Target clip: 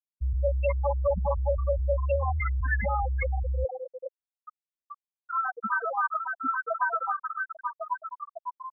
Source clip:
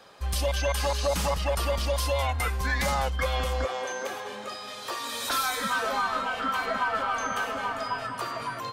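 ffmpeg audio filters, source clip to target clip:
-filter_complex "[0:a]asettb=1/sr,asplit=3[a][b][c];[a]atrim=end=2.974[d];[b]atrim=start=2.97:end=3.58,asetpts=PTS-STARTPTS,afade=t=in:d=0.004:c=qsin,afade=t=out:st=0.606:d=0.004:c=qsin,equalizer=f=370:w=2.8:g=-14[e];[c]atrim=start=3.576[f];[d][e]acrossfade=d=0.004:c1=hsin:c2=qsin[g];[g][f]acrossfade=d=0.004:c1=qsin:c2=hsin,afftfilt=real='re*gte(hypot(re,im),0.2)':imag='im*gte(hypot(re,im),0.2)':win_size=1024:overlap=0.75,volume=2dB"

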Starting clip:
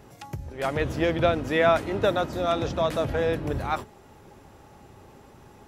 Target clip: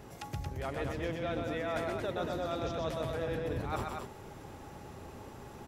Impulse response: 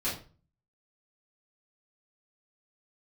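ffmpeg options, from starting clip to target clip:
-af "areverse,acompressor=threshold=-35dB:ratio=6,areverse,aecho=1:1:125.4|227.4:0.631|0.562"

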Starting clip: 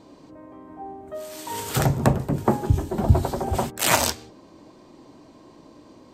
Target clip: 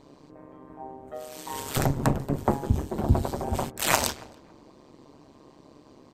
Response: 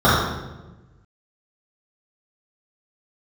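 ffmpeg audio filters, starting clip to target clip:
-filter_complex "[0:a]tremolo=f=140:d=0.889,asplit=2[a][b];[b]adelay=281,lowpass=f=1.8k:p=1,volume=-22.5dB,asplit=2[c][d];[d]adelay=281,lowpass=f=1.8k:p=1,volume=0.27[e];[c][e]amix=inputs=2:normalize=0[f];[a][f]amix=inputs=2:normalize=0"

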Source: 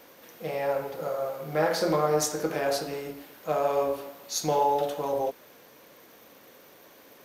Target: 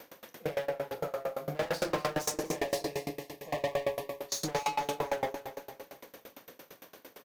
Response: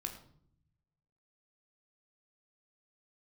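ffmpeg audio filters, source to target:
-filter_complex "[0:a]asplit=2[a][b];[b]adelay=41,volume=-4.5dB[c];[a][c]amix=inputs=2:normalize=0,asettb=1/sr,asplit=3[d][e][f];[d]atrim=end=0.654[g];[e]atrim=start=0.65:end=1.55,asetpts=PTS-STARTPTS,afade=t=in:d=0.004:c=qsin,afade=t=out:st=0.896:d=0.004:c=qsin,acompressor=threshold=-29dB:ratio=6[h];[f]atrim=start=1.546[i];[g][h]acrossfade=d=0.004:c1=hsin:c2=qsin[j];[j][i]acrossfade=d=0.004:c1=qsin:c2=hsin,volume=29.5dB,asoftclip=hard,volume=-29.5dB,asettb=1/sr,asplit=3[k][l][m];[k]atrim=end=2.314[n];[l]atrim=start=2.31:end=4.21,asetpts=PTS-STARTPTS,afade=t=in:d=0.004:c=qsin,afade=t=out:st=1.896:d=0.004:c=qsin,asuperstop=centerf=1400:order=8:qfactor=2.7[o];[m]atrim=start=4.206[p];[n][o]acrossfade=d=0.004:c1=hsin:c2=qsin[q];[q][p]acrossfade=d=0.004:c1=qsin:c2=hsin,aecho=1:1:241|482|723|964|1205:0.316|0.158|0.0791|0.0395|0.0198,aeval=exprs='val(0)*pow(10,-25*if(lt(mod(8.8*n/s,1),2*abs(8.8)/1000),1-mod(8.8*n/s,1)/(2*abs(8.8)/1000),(mod(8.8*n/s,1)-2*abs(8.8)/1000)/(1-2*abs(8.8)/1000))/20)':c=same,volume=5.5dB"

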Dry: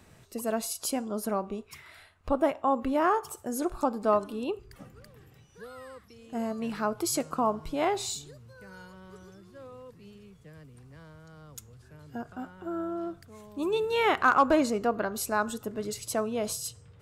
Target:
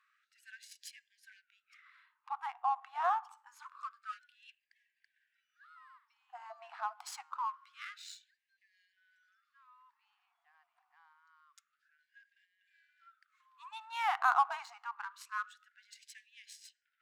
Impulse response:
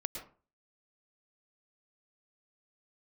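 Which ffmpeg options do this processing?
-af "adynamicsmooth=sensitivity=5.5:basefreq=2.6k,tiltshelf=f=750:g=6.5,afftfilt=real='re*gte(b*sr/1024,670*pow(1600/670,0.5+0.5*sin(2*PI*0.26*pts/sr)))':imag='im*gte(b*sr/1024,670*pow(1600/670,0.5+0.5*sin(2*PI*0.26*pts/sr)))':win_size=1024:overlap=0.75,volume=-3dB"

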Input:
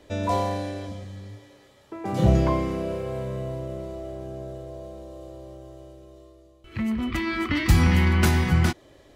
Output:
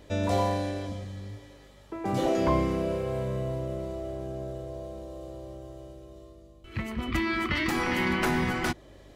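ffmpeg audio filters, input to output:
-filter_complex "[0:a]afftfilt=real='re*lt(hypot(re,im),0.501)':imag='im*lt(hypot(re,im),0.501)':win_size=1024:overlap=0.75,acrossover=split=360|2400[a][b][c];[c]alimiter=level_in=3dB:limit=-24dB:level=0:latency=1:release=444,volume=-3dB[d];[a][b][d]amix=inputs=3:normalize=0,aeval=exprs='val(0)+0.00178*(sin(2*PI*50*n/s)+sin(2*PI*2*50*n/s)/2+sin(2*PI*3*50*n/s)/3+sin(2*PI*4*50*n/s)/4+sin(2*PI*5*50*n/s)/5)':c=same"

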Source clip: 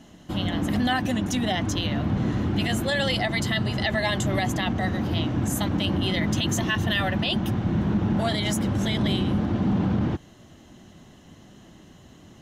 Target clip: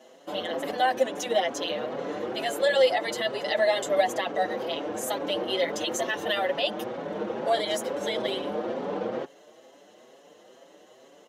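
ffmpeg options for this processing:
-filter_complex "[0:a]atempo=1.1,highpass=f=500:t=q:w=4.9,asplit=2[a][b];[b]adelay=6,afreqshift=2.2[c];[a][c]amix=inputs=2:normalize=1"

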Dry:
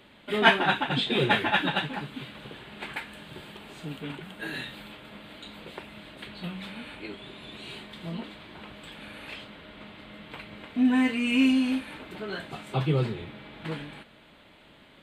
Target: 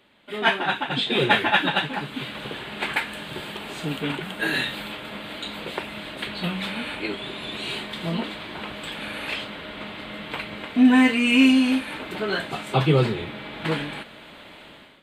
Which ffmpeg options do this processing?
-af "lowshelf=f=210:g=-6.5,dynaudnorm=f=180:g=5:m=15.5dB,volume=-4dB"

